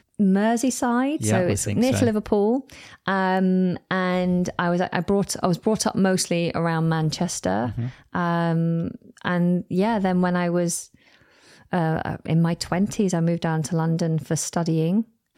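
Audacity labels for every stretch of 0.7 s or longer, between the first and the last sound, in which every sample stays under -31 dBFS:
10.820000	11.730000	silence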